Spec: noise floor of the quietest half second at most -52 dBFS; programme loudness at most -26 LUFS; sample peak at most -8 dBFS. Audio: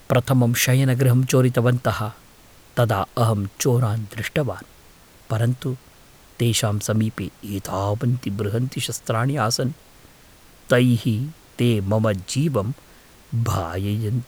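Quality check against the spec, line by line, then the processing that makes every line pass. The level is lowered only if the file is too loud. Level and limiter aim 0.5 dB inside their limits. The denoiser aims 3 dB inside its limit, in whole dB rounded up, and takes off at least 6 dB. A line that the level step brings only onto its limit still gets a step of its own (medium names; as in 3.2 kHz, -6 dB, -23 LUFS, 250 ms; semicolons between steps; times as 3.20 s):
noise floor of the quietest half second -49 dBFS: fail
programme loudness -22.0 LUFS: fail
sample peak -4.0 dBFS: fail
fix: trim -4.5 dB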